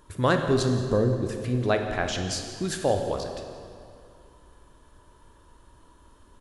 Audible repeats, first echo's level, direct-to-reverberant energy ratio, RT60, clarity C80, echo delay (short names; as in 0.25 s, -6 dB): 1, -16.5 dB, 4.5 dB, 2.4 s, 6.5 dB, 0.172 s